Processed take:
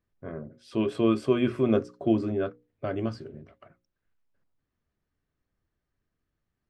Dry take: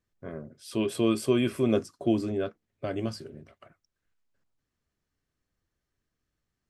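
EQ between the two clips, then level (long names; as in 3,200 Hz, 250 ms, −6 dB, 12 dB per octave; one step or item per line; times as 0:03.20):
mains-hum notches 60/120/180/240/300/360/420/480/540 Hz
dynamic equaliser 1,300 Hz, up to +4 dB, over −50 dBFS, Q 2
head-to-tape spacing loss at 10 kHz 20 dB
+2.5 dB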